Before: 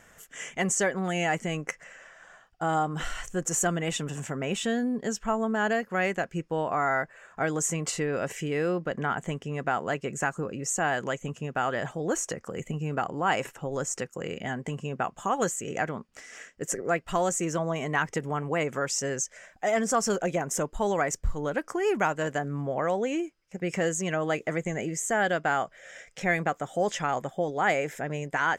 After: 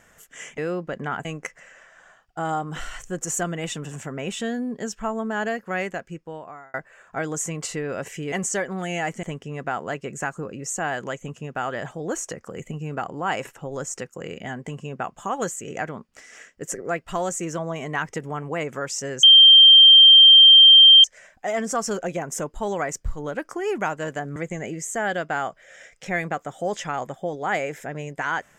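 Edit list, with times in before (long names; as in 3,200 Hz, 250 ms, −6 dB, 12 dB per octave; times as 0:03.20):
0:00.58–0:01.49: swap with 0:08.56–0:09.23
0:06.02–0:06.98: fade out
0:19.23: insert tone 3,160 Hz −6.5 dBFS 1.81 s
0:22.55–0:24.51: remove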